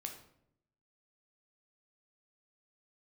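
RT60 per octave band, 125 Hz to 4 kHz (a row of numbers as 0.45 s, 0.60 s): 1.1 s, 0.95 s, 0.80 s, 0.65 s, 0.55 s, 0.45 s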